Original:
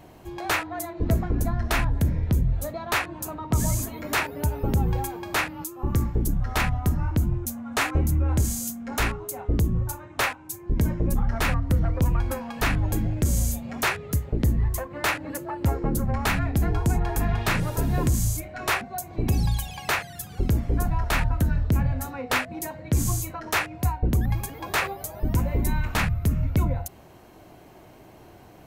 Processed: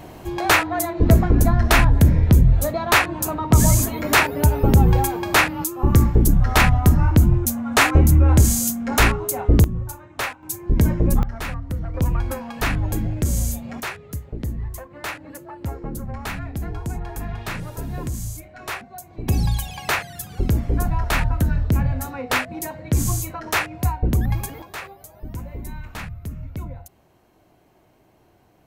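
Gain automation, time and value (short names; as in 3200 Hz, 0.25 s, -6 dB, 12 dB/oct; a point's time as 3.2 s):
+9 dB
from 9.64 s -1.5 dB
from 10.43 s +6 dB
from 11.23 s -5 dB
from 11.94 s +1.5 dB
from 13.8 s -5.5 dB
from 19.28 s +3 dB
from 24.62 s -9 dB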